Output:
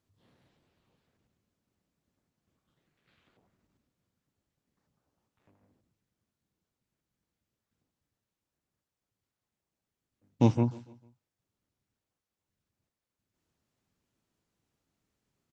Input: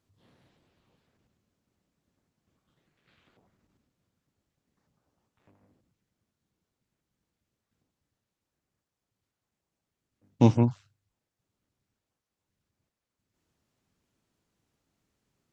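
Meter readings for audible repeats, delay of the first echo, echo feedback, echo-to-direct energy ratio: 2, 149 ms, 42%, -19.0 dB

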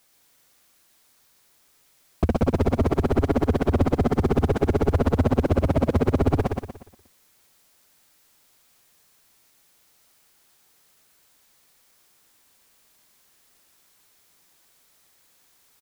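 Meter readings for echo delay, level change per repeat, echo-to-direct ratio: 119 ms, -8.5 dB, -3.5 dB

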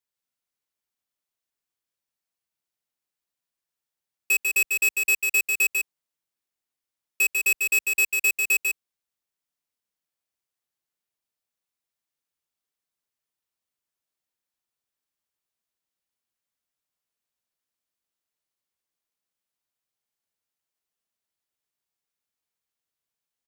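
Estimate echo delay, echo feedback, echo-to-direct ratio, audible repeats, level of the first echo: 146 ms, no regular repeats, -4.0 dB, 1, -4.0 dB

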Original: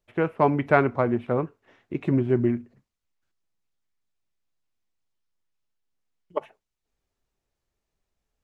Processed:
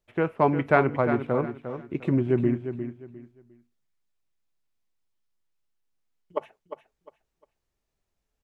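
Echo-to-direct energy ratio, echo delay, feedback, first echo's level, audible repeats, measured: -9.0 dB, 353 ms, 26%, -9.5 dB, 3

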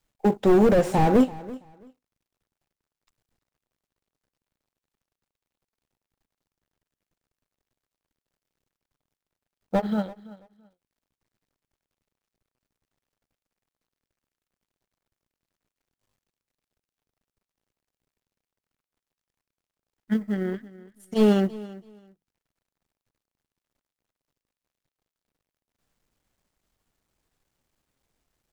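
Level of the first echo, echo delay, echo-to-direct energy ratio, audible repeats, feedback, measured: -19.0 dB, 333 ms, -19.0 dB, 2, 20%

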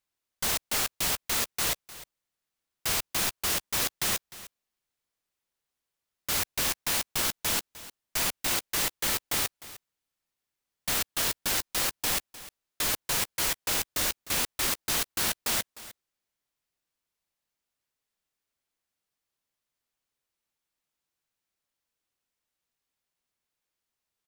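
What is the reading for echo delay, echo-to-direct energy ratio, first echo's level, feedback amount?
304 ms, -17.0 dB, -17.0 dB, no regular repeats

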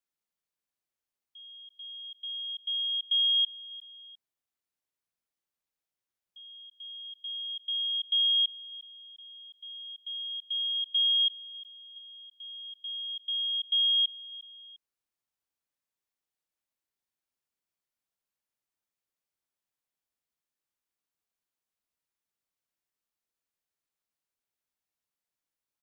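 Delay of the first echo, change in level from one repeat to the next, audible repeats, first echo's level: 352 ms, -7.0 dB, 2, -18.0 dB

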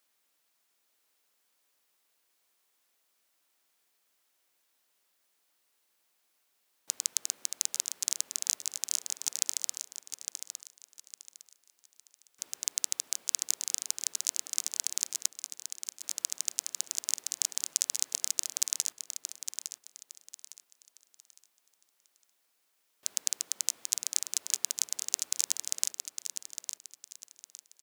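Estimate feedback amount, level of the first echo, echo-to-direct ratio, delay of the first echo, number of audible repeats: 30%, -8.0 dB, -7.5 dB, 858 ms, 3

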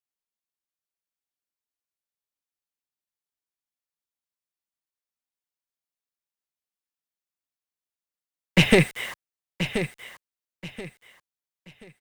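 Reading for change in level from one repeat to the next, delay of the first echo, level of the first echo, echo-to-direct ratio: -11.0 dB, 1030 ms, -10.0 dB, -9.5 dB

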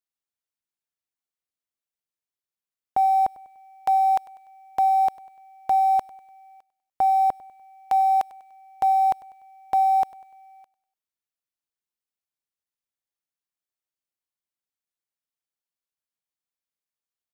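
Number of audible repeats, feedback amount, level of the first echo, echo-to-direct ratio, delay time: 2, 43%, -21.0 dB, -20.0 dB, 98 ms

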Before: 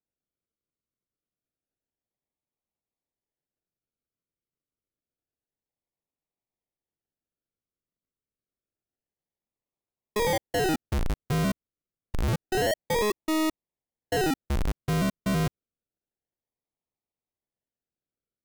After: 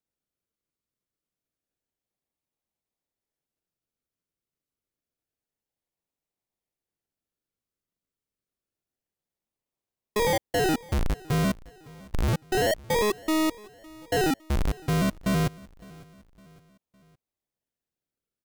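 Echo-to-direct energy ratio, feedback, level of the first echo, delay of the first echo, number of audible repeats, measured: -22.0 dB, 47%, -23.0 dB, 559 ms, 2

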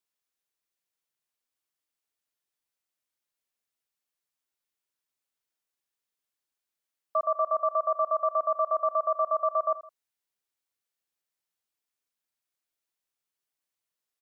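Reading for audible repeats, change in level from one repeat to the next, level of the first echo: 2, -7.5 dB, -16.0 dB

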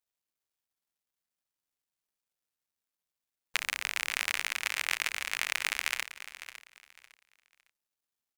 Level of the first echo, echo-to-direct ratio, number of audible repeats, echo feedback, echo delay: -13.5 dB, -13.0 dB, 2, 25%, 556 ms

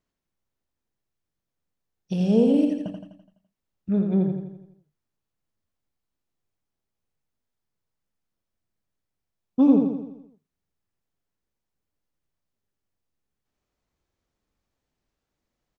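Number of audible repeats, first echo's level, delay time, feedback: 6, -5.0 dB, 84 ms, 52%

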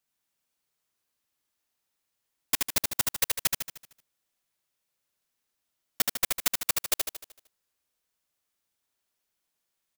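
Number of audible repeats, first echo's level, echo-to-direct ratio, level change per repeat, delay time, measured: 6, -3.5 dB, -2.5 dB, -6.0 dB, 76 ms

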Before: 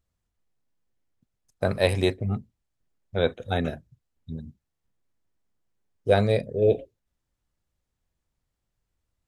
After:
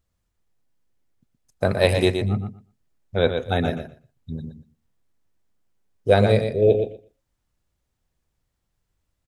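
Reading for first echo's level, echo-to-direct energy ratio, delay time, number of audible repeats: -7.0 dB, -7.0 dB, 120 ms, 2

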